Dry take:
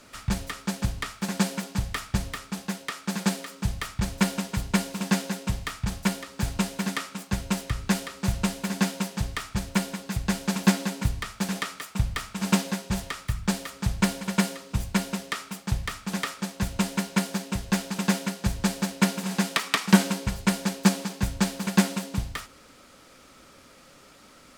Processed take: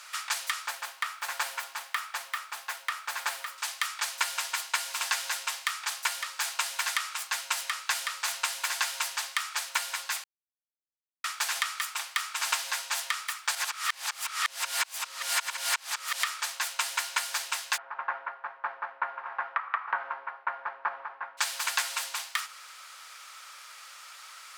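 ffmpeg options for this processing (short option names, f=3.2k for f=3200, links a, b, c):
-filter_complex "[0:a]asettb=1/sr,asplit=3[a][b][c];[a]atrim=end=0.674[d];[b]atrim=start=0.67:end=3.58,asetpts=PTS-STARTPTS,afade=t=in:d=0.004:c=qsin,afade=t=out:st=2.906:d=0.004:c=qsin,equalizer=f=6.3k:w=0.37:g=-10[e];[c]atrim=start=3.576[f];[d][e]acrossfade=d=0.004:c1=hsin:c2=qsin[g];[g][f]acrossfade=d=0.004:c1=qsin:c2=hsin,asplit=3[h][i][j];[h]afade=t=out:st=17.76:d=0.02[k];[i]lowpass=f=1.4k:w=0.5412,lowpass=f=1.4k:w=1.3066,afade=t=in:st=17.76:d=0.02,afade=t=out:st=21.37:d=0.02[l];[j]afade=t=in:st=21.37:d=0.02[m];[k][l][m]amix=inputs=3:normalize=0,asplit=5[n][o][p][q][r];[n]atrim=end=10.24,asetpts=PTS-STARTPTS,afade=t=out:st=10.236:d=0.004:c=hsin[s];[o]atrim=start=10.24:end=11.24,asetpts=PTS-STARTPTS,volume=0[t];[p]atrim=start=11.24:end=13.552,asetpts=PTS-STARTPTS,afade=t=in:d=0.004:c=hsin[u];[q]atrim=start=13.548:end=16.232,asetpts=PTS-STARTPTS,areverse[v];[r]atrim=start=16.228[w];[s][t][u]concat=n=3:v=0:a=1[x];[x][v]acrossfade=d=0.004:c1=hsin:c2=hsin[y];[y][w]acrossfade=d=0.004:c1=hsin:c2=hsin,highpass=f=990:w=0.5412,highpass=f=990:w=1.3066,acompressor=threshold=-33dB:ratio=5,volume=7.5dB"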